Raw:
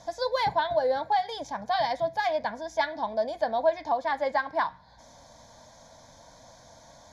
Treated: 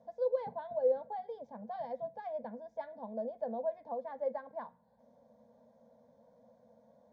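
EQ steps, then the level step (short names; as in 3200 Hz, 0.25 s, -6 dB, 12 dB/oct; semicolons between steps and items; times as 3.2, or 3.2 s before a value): double band-pass 330 Hz, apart 1.1 oct; 0.0 dB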